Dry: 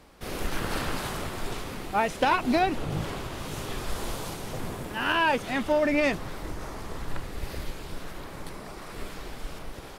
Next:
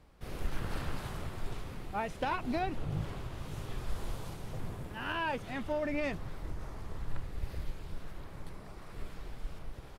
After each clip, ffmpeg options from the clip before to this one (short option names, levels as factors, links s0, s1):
-af "firequalizer=gain_entry='entry(110,0);entry(240,-8);entry(5900,-12)':delay=0.05:min_phase=1,volume=0.794"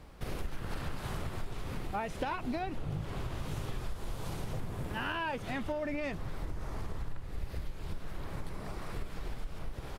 -af "acompressor=threshold=0.00891:ratio=6,volume=2.66"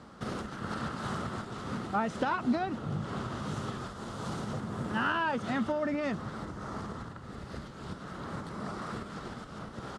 -af "highpass=120,equalizer=f=220:t=q:w=4:g=9,equalizer=f=1300:t=q:w=4:g=9,equalizer=f=2400:t=q:w=4:g=-8,lowpass=f=8700:w=0.5412,lowpass=f=8700:w=1.3066,volume=1.5"